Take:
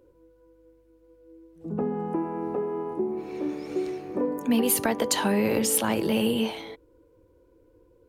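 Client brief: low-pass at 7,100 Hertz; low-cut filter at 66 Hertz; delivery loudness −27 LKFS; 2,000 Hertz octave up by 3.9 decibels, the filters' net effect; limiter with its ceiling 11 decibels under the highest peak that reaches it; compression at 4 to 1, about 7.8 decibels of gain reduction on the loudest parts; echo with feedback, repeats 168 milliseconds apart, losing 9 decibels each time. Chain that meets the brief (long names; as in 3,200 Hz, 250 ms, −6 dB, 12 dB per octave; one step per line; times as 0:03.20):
high-pass filter 66 Hz
low-pass filter 7,100 Hz
parametric band 2,000 Hz +5 dB
downward compressor 4 to 1, threshold −28 dBFS
brickwall limiter −27 dBFS
repeating echo 168 ms, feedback 35%, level −9 dB
level +8 dB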